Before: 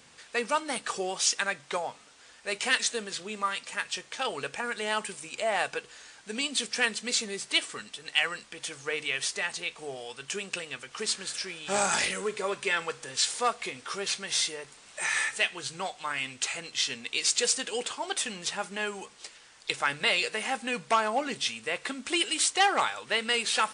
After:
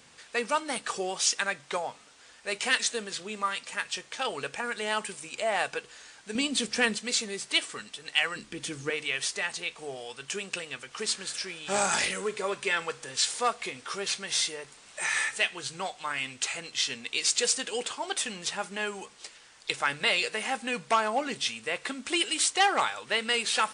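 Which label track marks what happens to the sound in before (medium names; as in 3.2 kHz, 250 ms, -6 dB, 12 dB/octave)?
6.350000	6.980000	bass shelf 420 Hz +10.5 dB
8.360000	8.900000	resonant low shelf 440 Hz +9.5 dB, Q 1.5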